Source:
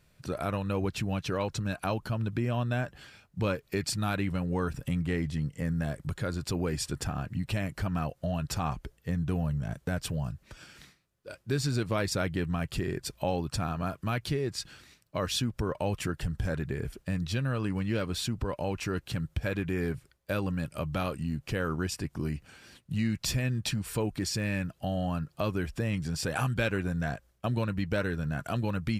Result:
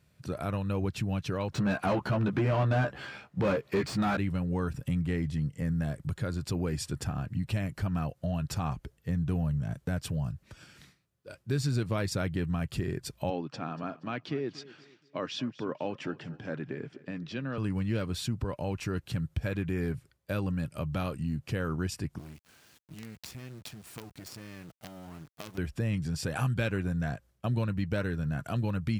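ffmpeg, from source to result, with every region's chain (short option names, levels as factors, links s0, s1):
-filter_complex "[0:a]asettb=1/sr,asplit=3[s0][s1][s2];[s0]atrim=end=1.524[s3];[s1]atrim=start=1.52:end=4.17,asetpts=PTS-STARTPTS,afade=t=in:d=0.004:c=qsin,afade=t=out:st=2.646:d=0.004:c=qsin,asplit=2[s4][s5];[s5]adelay=15,volume=0.596[s6];[s4][s6]amix=inputs=2:normalize=0,atrim=end_sample=116865,asplit=2[s7][s8];[s8]highpass=f=720:p=1,volume=15.8,asoftclip=type=tanh:threshold=0.15[s9];[s7][s9]amix=inputs=2:normalize=0,lowpass=f=1100:p=1,volume=0.501[s10];[s2]atrim=start=4.166[s11];[s3][s10]acrossfade=d=0.004:c1=hsin:c2=qsin[s12];[s12][s11]acrossfade=d=0.004:c1=qsin:c2=hsin,asettb=1/sr,asplit=3[s13][s14][s15];[s13]atrim=end=13.304[s16];[s14]atrim=start=13.3:end=17.58,asetpts=PTS-STARTPTS,afade=t=in:d=0.004:c=qsin,afade=t=out:st=4.276:d=0.004:c=qsin,highpass=f=170:w=0.5412,highpass=f=170:w=1.3066,equalizer=f=190:t=q:w=4:g=-7,equalizer=f=280:t=q:w=4:g=4,equalizer=f=4200:t=q:w=4:g=-6,lowpass=f=5000:w=0.5412,lowpass=f=5000:w=1.3066,aecho=1:1:237|474|711:0.119|0.044|0.0163,atrim=end_sample=188748[s17];[s15]atrim=start=17.576[s18];[s16][s17]acrossfade=d=0.004:c1=hsin:c2=qsin[s19];[s19][s18]acrossfade=d=0.004:c1=qsin:c2=hsin,asettb=1/sr,asplit=3[s20][s21][s22];[s20]atrim=end=22.184[s23];[s21]atrim=start=22.18:end=25.58,asetpts=PTS-STARTPTS,afade=t=in:d=0.004:c=qsin,afade=t=out:st=3.396:d=0.004:c=qsin,lowshelf=f=190:g=-9,acompressor=threshold=0.0141:ratio=3:attack=3.2:release=140:knee=1:detection=peak,acrusher=bits=6:dc=4:mix=0:aa=0.000001[s24];[s22]atrim=start=25.576[s25];[s23][s24]acrossfade=d=0.004:c1=hsin:c2=qsin[s26];[s26][s25]acrossfade=d=0.004:c1=qsin:c2=hsin,highpass=88,lowshelf=f=150:g=10,volume=0.668"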